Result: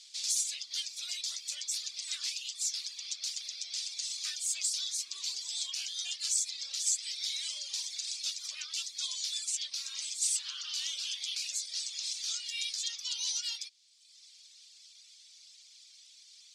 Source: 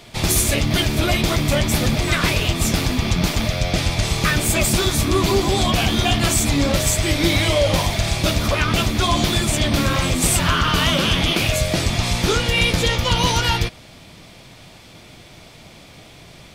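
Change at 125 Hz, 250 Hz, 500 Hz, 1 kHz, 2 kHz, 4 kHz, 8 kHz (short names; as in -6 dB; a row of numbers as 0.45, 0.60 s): under -40 dB, under -40 dB, under -40 dB, under -40 dB, -25.5 dB, -12.5 dB, -8.5 dB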